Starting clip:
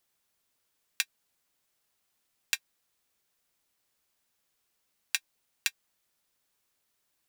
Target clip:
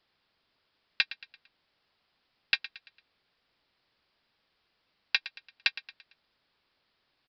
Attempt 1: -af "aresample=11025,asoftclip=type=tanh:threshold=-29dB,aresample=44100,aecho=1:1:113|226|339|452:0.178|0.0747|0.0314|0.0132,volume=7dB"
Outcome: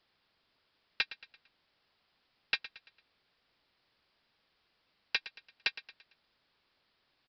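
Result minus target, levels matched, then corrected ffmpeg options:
soft clipping: distortion +9 dB
-af "aresample=11025,asoftclip=type=tanh:threshold=-18dB,aresample=44100,aecho=1:1:113|226|339|452:0.178|0.0747|0.0314|0.0132,volume=7dB"

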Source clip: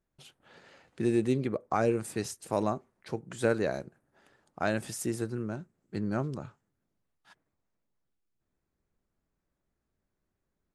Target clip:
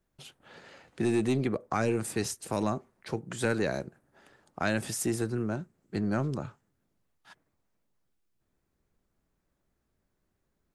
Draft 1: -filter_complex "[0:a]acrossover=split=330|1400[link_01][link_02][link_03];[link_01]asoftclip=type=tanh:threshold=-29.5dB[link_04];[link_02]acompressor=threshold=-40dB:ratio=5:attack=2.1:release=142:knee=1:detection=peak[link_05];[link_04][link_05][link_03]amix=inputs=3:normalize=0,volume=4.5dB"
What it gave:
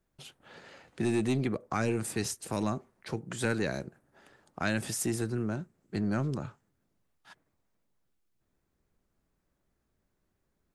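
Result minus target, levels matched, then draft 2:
downward compressor: peak gain reduction +5 dB
-filter_complex "[0:a]acrossover=split=330|1400[link_01][link_02][link_03];[link_01]asoftclip=type=tanh:threshold=-29.5dB[link_04];[link_02]acompressor=threshold=-33.5dB:ratio=5:attack=2.1:release=142:knee=1:detection=peak[link_05];[link_04][link_05][link_03]amix=inputs=3:normalize=0,volume=4.5dB"

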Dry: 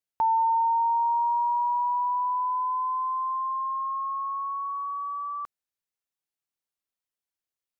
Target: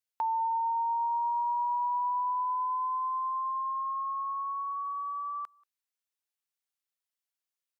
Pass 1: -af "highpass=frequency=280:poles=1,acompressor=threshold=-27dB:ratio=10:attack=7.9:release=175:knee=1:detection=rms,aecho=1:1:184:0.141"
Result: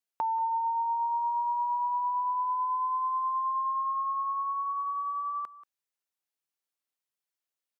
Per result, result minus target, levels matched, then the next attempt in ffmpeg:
250 Hz band +8.0 dB; echo-to-direct +11 dB
-af "highpass=frequency=1100:poles=1,acompressor=threshold=-27dB:ratio=10:attack=7.9:release=175:knee=1:detection=rms,aecho=1:1:184:0.141"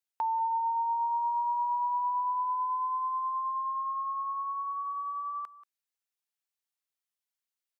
echo-to-direct +11 dB
-af "highpass=frequency=1100:poles=1,acompressor=threshold=-27dB:ratio=10:attack=7.9:release=175:knee=1:detection=rms,aecho=1:1:184:0.0398"

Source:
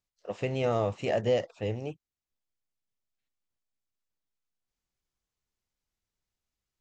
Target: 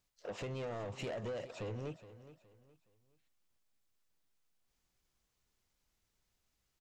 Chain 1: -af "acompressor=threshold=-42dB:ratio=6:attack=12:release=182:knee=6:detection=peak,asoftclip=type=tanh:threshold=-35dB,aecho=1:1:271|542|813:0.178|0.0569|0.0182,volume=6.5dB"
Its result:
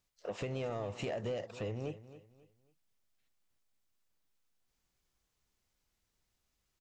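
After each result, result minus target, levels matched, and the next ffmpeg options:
echo 147 ms early; soft clipping: distortion −8 dB
-af "acompressor=threshold=-42dB:ratio=6:attack=12:release=182:knee=6:detection=peak,asoftclip=type=tanh:threshold=-35dB,aecho=1:1:418|836|1254:0.178|0.0569|0.0182,volume=6.5dB"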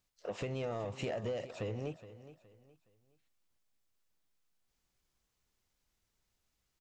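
soft clipping: distortion −8 dB
-af "acompressor=threshold=-42dB:ratio=6:attack=12:release=182:knee=6:detection=peak,asoftclip=type=tanh:threshold=-43dB,aecho=1:1:418|836|1254:0.178|0.0569|0.0182,volume=6.5dB"

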